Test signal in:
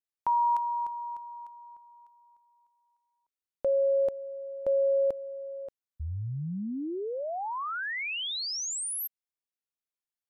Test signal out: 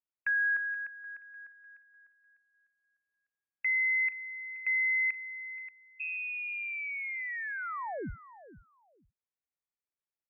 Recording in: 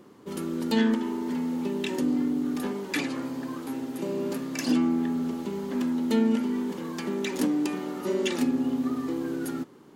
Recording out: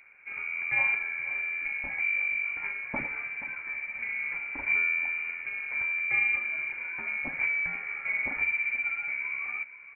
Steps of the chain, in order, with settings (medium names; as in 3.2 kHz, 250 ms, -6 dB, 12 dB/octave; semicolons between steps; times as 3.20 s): frequency inversion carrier 2.6 kHz; feedback delay 477 ms, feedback 18%, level -16 dB; trim -3.5 dB